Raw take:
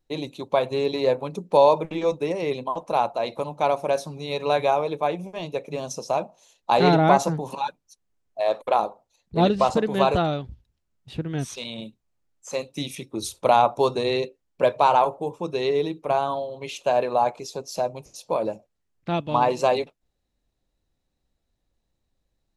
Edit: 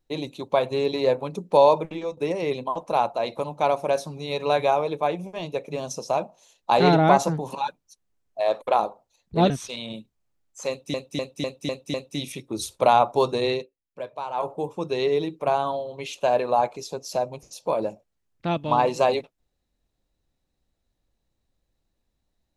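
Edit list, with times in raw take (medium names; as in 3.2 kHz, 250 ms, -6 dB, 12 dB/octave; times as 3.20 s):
1.77–2.17 s: fade out, to -12.5 dB
9.50–11.38 s: delete
12.57–12.82 s: loop, 6 plays
14.13–15.15 s: dip -14.5 dB, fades 0.19 s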